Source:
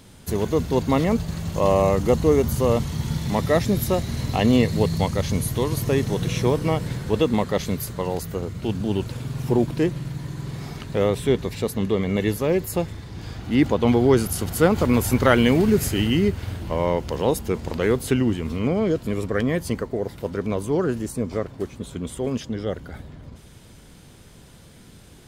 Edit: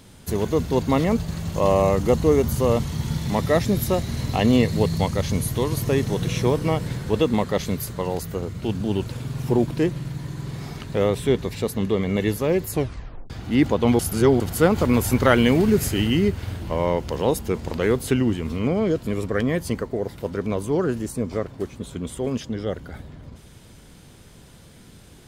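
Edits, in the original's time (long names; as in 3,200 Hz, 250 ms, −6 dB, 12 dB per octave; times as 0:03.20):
0:12.71: tape stop 0.59 s
0:13.99–0:14.40: reverse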